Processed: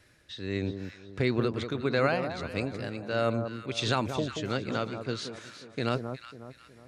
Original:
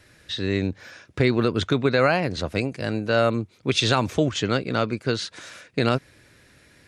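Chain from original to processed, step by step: tremolo 1.5 Hz, depth 50%; on a send: echo whose repeats swap between lows and highs 182 ms, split 1.2 kHz, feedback 60%, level -7 dB; on the sum: trim -6.5 dB

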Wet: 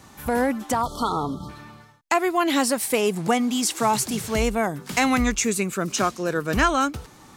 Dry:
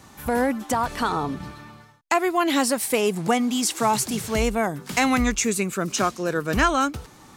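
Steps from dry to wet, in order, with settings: spectral selection erased 0.82–1.49 s, 1.4–3 kHz

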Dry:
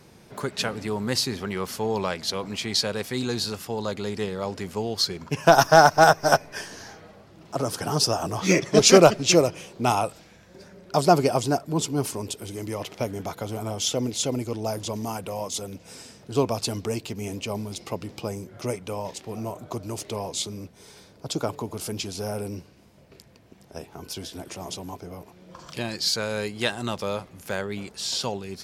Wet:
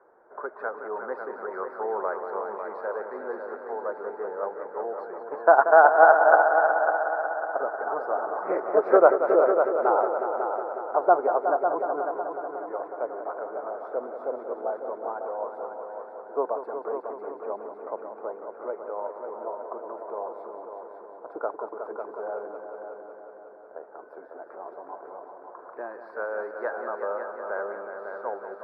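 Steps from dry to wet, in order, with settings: high-pass 440 Hz 24 dB/octave; crackle 97 per s -51 dBFS; elliptic low-pass 1.5 kHz, stop band 50 dB; on a send: multi-head delay 183 ms, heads all three, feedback 59%, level -10 dB

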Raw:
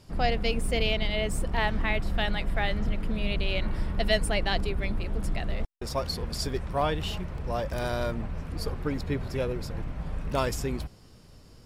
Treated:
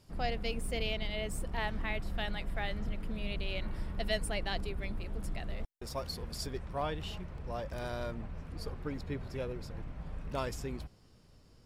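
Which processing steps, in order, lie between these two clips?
treble shelf 10 kHz +5.5 dB, from 6.46 s -5 dB; trim -8.5 dB

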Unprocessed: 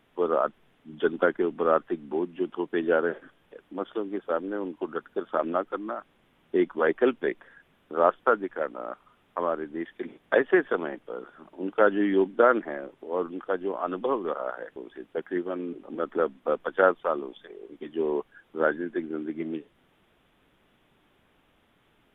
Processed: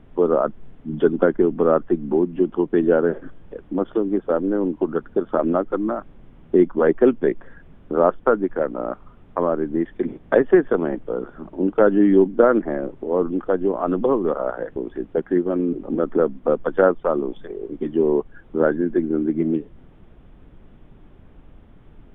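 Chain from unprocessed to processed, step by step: tilt EQ -4.5 dB/octave; in parallel at +3 dB: compression, threshold -26 dBFS, peak gain reduction 15.5 dB; on the sum: trim -1 dB

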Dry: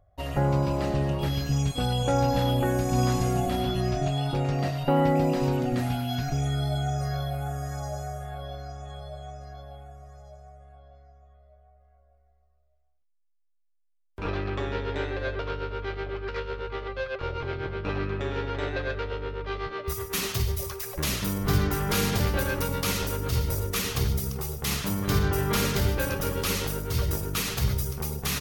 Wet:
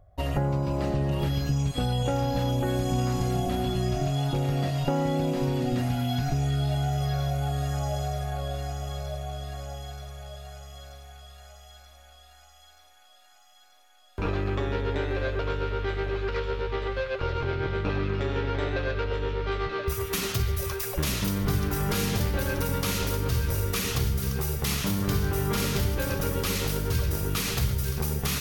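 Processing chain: compression 4:1, threshold -30 dBFS, peak gain reduction 10.5 dB; bass shelf 460 Hz +4 dB; feedback echo behind a high-pass 931 ms, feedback 73%, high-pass 1.8 kHz, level -5.5 dB; trim +3 dB

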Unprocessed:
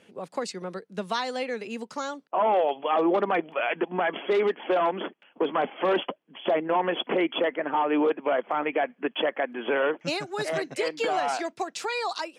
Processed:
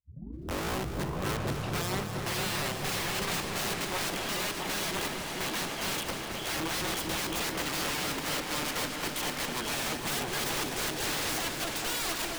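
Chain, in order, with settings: tape start-up on the opening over 2.89 s; high-pass 60 Hz 24 dB/octave; peak limiter -20 dBFS, peak gain reduction 6 dB; integer overflow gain 29 dB; on a send: delay with an opening low-pass 223 ms, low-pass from 200 Hz, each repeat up 2 oct, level 0 dB; on the sum: bit-crushed delay 251 ms, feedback 80%, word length 10-bit, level -10 dB

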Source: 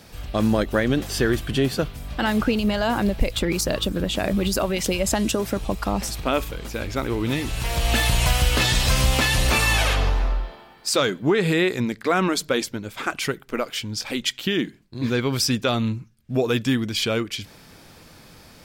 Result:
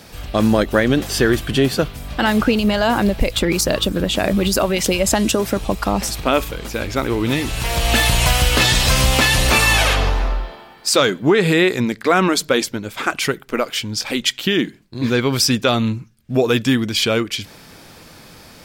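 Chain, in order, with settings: bass shelf 140 Hz -4 dB; trim +6 dB

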